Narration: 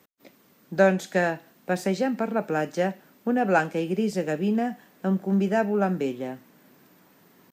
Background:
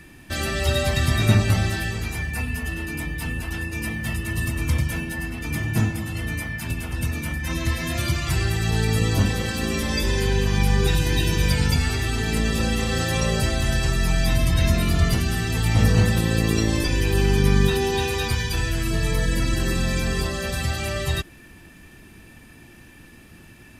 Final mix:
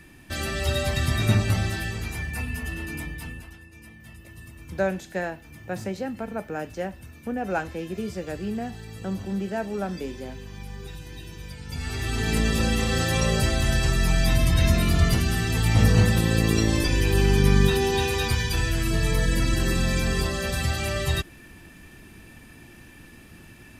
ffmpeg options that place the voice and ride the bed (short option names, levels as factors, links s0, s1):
-filter_complex "[0:a]adelay=4000,volume=0.501[s0];[1:a]volume=5.62,afade=t=out:st=2.94:d=0.64:silence=0.16788,afade=t=in:st=11.66:d=0.64:silence=0.11885[s1];[s0][s1]amix=inputs=2:normalize=0"